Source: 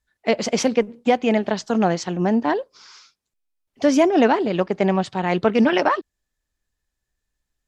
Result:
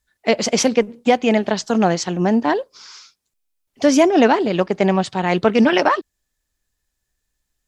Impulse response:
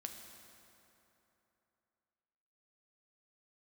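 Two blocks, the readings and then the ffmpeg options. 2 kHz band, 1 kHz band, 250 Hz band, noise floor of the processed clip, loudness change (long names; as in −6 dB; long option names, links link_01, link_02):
+3.5 dB, +2.5 dB, +2.5 dB, −77 dBFS, +3.0 dB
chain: -af "highshelf=frequency=4500:gain=6.5,volume=2.5dB"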